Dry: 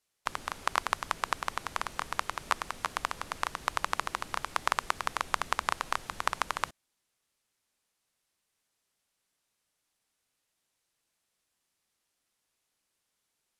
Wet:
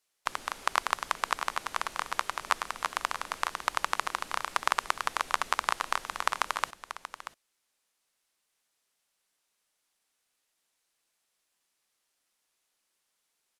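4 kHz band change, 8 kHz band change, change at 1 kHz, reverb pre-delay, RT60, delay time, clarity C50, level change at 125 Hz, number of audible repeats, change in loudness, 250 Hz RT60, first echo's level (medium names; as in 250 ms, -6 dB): +2.5 dB, +2.5 dB, +2.0 dB, no reverb, no reverb, 634 ms, no reverb, no reading, 1, +2.0 dB, no reverb, -11.5 dB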